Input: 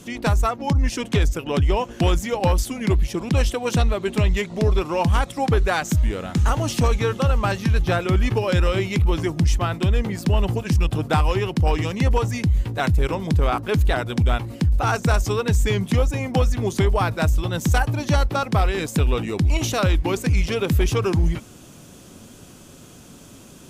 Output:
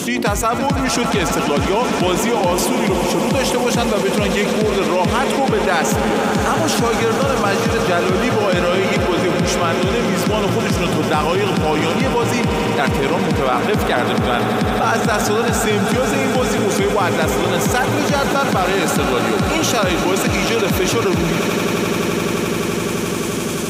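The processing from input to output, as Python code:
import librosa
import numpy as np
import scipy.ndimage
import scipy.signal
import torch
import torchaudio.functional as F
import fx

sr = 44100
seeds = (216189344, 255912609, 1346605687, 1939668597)

p1 = scipy.signal.sosfilt(scipy.signal.butter(2, 180.0, 'highpass', fs=sr, output='sos'), x)
p2 = p1 + fx.echo_swell(p1, sr, ms=86, loudest=8, wet_db=-15, dry=0)
p3 = fx.env_flatten(p2, sr, amount_pct=70)
y = p3 * librosa.db_to_amplitude(2.5)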